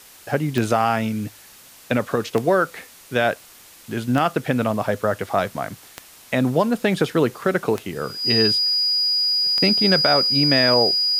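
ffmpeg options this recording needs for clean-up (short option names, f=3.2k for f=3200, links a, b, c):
-af "adeclick=t=4,bandreject=f=4.9k:w=30,afwtdn=0.0056"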